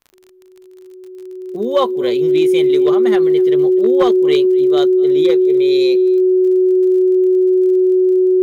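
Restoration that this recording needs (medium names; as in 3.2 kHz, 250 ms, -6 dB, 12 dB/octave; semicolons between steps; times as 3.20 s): clip repair -6 dBFS; de-click; band-stop 370 Hz, Q 30; inverse comb 248 ms -23 dB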